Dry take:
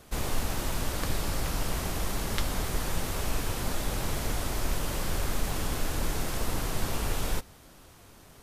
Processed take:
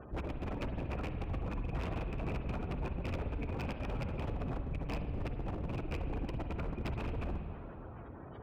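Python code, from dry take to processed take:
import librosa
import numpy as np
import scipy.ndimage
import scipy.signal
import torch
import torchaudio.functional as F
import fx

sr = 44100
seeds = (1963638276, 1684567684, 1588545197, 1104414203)

y = fx.rattle_buzz(x, sr, strikes_db=-42.0, level_db=-22.0)
y = fx.lowpass(y, sr, hz=1800.0, slope=6)
y = fx.hum_notches(y, sr, base_hz=50, count=4)
y = 10.0 ** (-30.0 / 20.0) * np.tanh(y / 10.0 ** (-30.0 / 20.0))
y = fx.spec_gate(y, sr, threshold_db=-20, keep='strong')
y = scipy.signal.sosfilt(scipy.signal.butter(2, 54.0, 'highpass', fs=sr, output='sos'), y)
y = fx.rider(y, sr, range_db=10, speed_s=0.5)
y = fx.low_shelf(y, sr, hz=110.0, db=4.0)
y = 10.0 ** (-35.0 / 20.0) * (np.abs((y / 10.0 ** (-35.0 / 20.0) + 3.0) % 4.0 - 2.0) - 1.0)
y = fx.rev_spring(y, sr, rt60_s=2.1, pass_ms=(45, 52), chirp_ms=30, drr_db=6.0)
y = y * librosa.db_to_amplitude(3.0)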